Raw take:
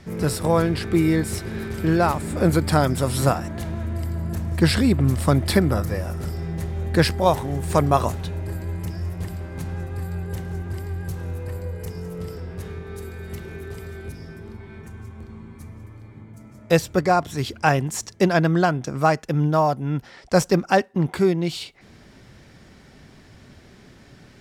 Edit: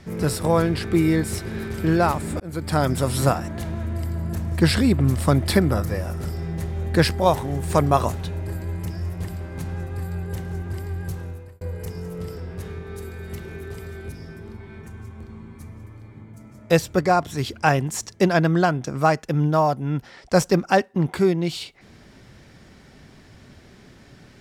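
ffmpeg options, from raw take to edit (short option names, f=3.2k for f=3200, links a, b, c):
-filter_complex "[0:a]asplit=3[a][b][c];[a]atrim=end=2.4,asetpts=PTS-STARTPTS,afade=t=out:st=2.396:d=0.004:c=hsin[d];[b]atrim=start=2.4:end=11.61,asetpts=PTS-STARTPTS,afade=t=in:d=0.5,afade=t=out:st=8.72:d=0.49[e];[c]atrim=start=11.61,asetpts=PTS-STARTPTS,afade=t=in:d=0.004:c=hsin[f];[d][e][f]concat=n=3:v=0:a=1"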